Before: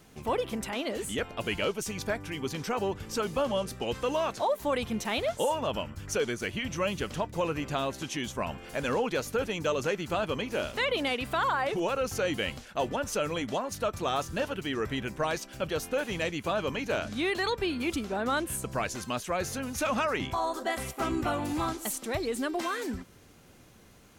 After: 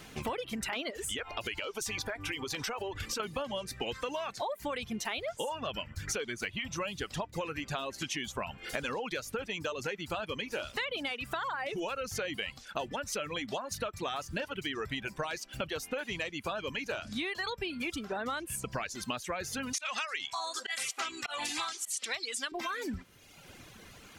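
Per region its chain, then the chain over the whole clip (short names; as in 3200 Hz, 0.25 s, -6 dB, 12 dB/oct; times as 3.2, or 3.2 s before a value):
0.9–3.2 bell 180 Hz -12 dB 0.7 oct + compressor, threshold -35 dBFS
19.73–22.52 weighting filter ITU-R 468 + auto swell 0.169 s
whole clip: reverb removal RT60 1 s; bell 2600 Hz +7 dB 2.4 oct; compressor 12:1, threshold -37 dBFS; gain +4.5 dB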